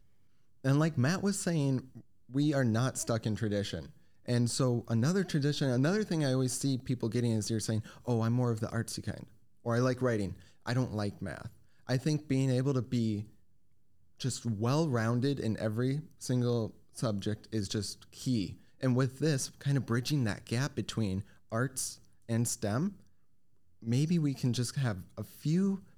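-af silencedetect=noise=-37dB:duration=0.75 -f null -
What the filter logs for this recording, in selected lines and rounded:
silence_start: 13.22
silence_end: 14.21 | silence_duration: 0.98
silence_start: 22.89
silence_end: 23.87 | silence_duration: 0.98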